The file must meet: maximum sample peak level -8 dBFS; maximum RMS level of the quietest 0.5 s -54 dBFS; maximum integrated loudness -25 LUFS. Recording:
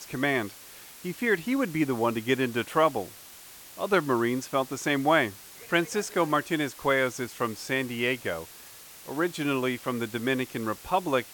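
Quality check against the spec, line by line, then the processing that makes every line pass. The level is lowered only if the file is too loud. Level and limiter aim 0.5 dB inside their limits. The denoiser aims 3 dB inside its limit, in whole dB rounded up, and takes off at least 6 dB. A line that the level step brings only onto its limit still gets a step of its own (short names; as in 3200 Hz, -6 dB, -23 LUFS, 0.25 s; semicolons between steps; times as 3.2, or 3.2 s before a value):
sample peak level -9.0 dBFS: OK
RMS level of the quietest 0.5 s -48 dBFS: fail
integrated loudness -27.5 LUFS: OK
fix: denoiser 9 dB, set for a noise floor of -48 dBFS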